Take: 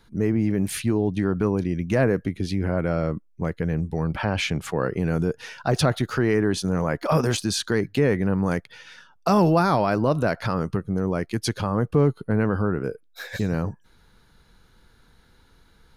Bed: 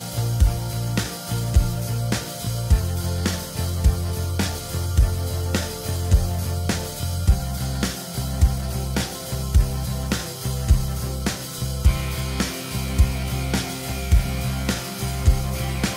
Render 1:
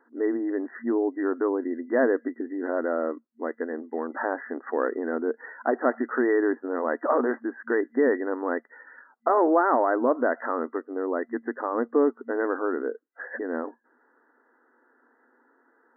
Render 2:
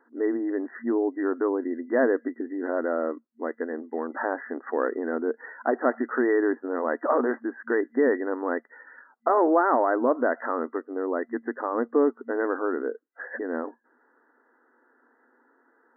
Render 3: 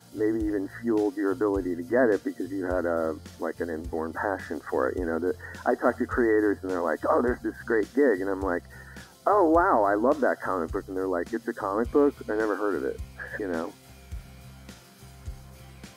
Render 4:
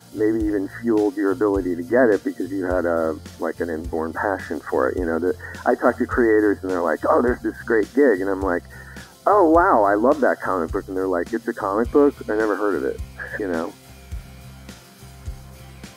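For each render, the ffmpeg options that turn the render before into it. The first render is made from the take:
-af "afftfilt=real='re*between(b*sr/4096,230,2000)':imag='im*between(b*sr/4096,230,2000)':win_size=4096:overlap=0.75"
-af anull
-filter_complex "[1:a]volume=-22dB[a];[0:a][a]amix=inputs=2:normalize=0"
-af "volume=6dB"

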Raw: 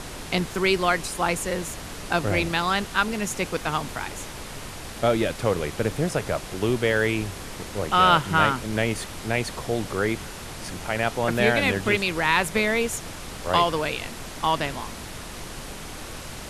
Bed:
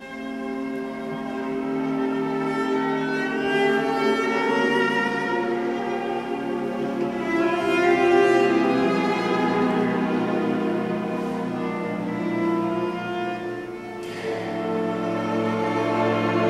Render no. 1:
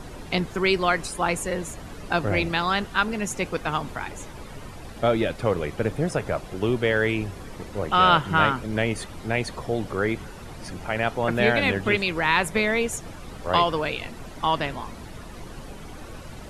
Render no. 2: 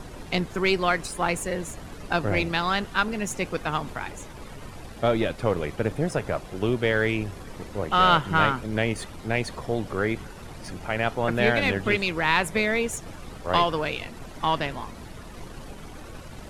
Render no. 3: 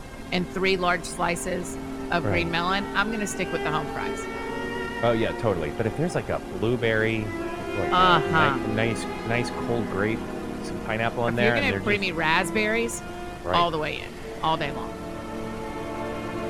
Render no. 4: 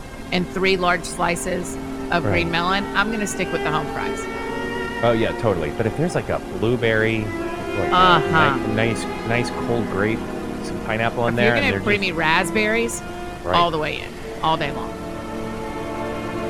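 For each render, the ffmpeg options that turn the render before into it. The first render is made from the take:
-af "afftdn=nr=11:nf=-38"
-af "aeval=exprs='if(lt(val(0),0),0.708*val(0),val(0))':c=same"
-filter_complex "[1:a]volume=-10dB[a];[0:a][a]amix=inputs=2:normalize=0"
-af "volume=4.5dB,alimiter=limit=-2dB:level=0:latency=1"

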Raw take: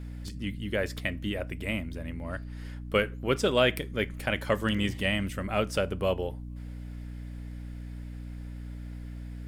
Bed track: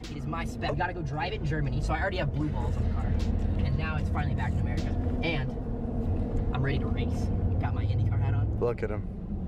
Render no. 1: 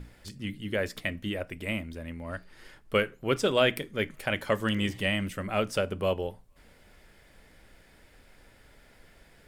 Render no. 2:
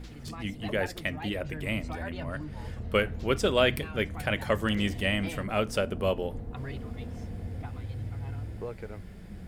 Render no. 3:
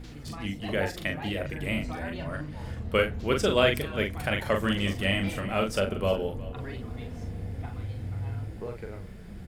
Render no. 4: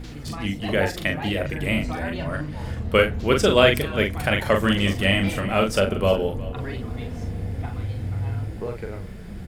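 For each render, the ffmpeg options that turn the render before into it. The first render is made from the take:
-af "bandreject=f=60:t=h:w=6,bandreject=f=120:t=h:w=6,bandreject=f=180:t=h:w=6,bandreject=f=240:t=h:w=6,bandreject=f=300:t=h:w=6"
-filter_complex "[1:a]volume=-9.5dB[a];[0:a][a]amix=inputs=2:normalize=0"
-filter_complex "[0:a]asplit=2[a][b];[b]adelay=41,volume=-4.5dB[c];[a][c]amix=inputs=2:normalize=0,aecho=1:1:362:0.119"
-af "volume=6.5dB"

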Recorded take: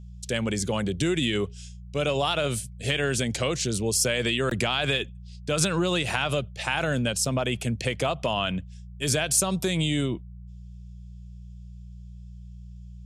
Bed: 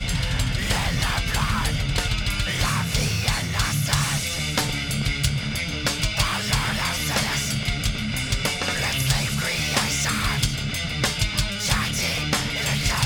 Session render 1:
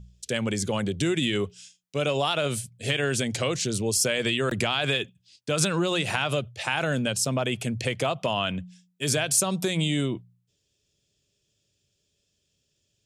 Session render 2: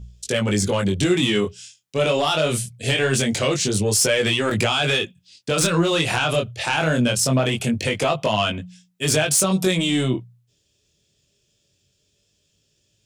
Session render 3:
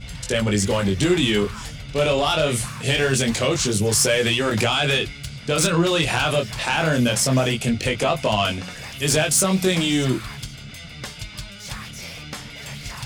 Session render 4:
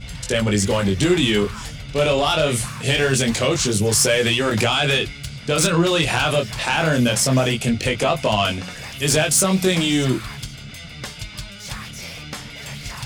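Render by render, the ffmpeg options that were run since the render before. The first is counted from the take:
-af "bandreject=f=60:t=h:w=4,bandreject=f=120:t=h:w=4,bandreject=f=180:t=h:w=4"
-af "aeval=exprs='0.376*sin(PI/2*2*val(0)/0.376)':c=same,flanger=delay=18.5:depth=7.2:speed=0.23"
-filter_complex "[1:a]volume=-11dB[a];[0:a][a]amix=inputs=2:normalize=0"
-af "volume=1.5dB"

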